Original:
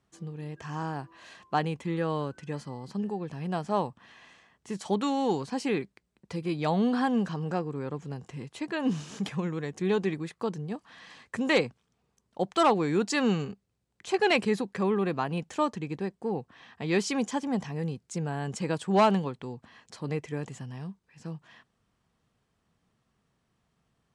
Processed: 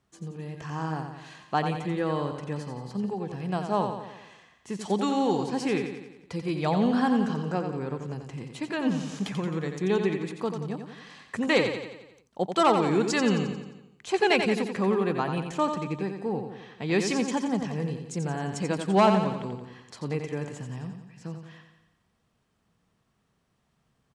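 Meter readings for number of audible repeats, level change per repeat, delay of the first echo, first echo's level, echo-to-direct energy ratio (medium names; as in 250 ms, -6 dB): 6, -5.5 dB, 88 ms, -7.0 dB, -5.5 dB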